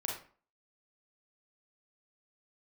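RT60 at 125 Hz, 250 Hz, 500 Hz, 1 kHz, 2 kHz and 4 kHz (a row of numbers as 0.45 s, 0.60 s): 0.40 s, 0.45 s, 0.45 s, 0.45 s, 0.40 s, 0.30 s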